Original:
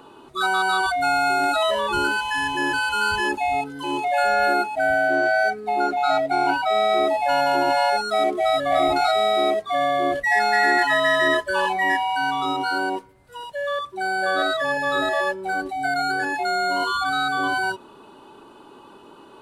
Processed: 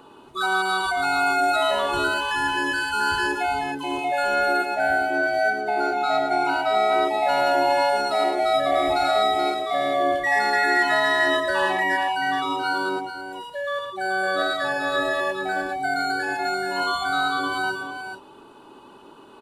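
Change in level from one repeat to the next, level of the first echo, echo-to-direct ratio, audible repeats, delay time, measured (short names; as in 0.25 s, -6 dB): no steady repeat, -7.0 dB, -5.0 dB, 2, 0.111 s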